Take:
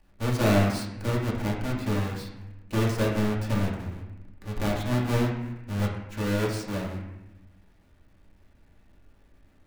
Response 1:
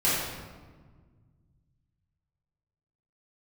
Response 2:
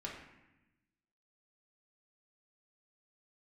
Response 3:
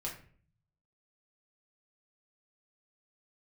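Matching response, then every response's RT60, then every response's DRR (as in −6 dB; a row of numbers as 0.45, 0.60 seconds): 2; 1.5, 0.95, 0.50 seconds; −10.0, −4.0, −4.0 decibels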